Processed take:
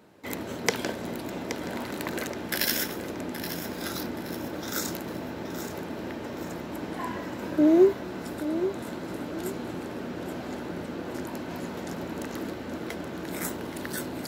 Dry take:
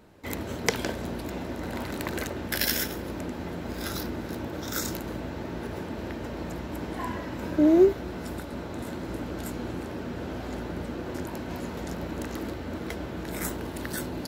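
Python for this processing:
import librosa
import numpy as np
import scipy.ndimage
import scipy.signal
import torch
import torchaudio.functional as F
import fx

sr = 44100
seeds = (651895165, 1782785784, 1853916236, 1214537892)

p1 = scipy.signal.sosfilt(scipy.signal.butter(2, 140.0, 'highpass', fs=sr, output='sos'), x)
y = p1 + fx.echo_feedback(p1, sr, ms=824, feedback_pct=35, wet_db=-10.5, dry=0)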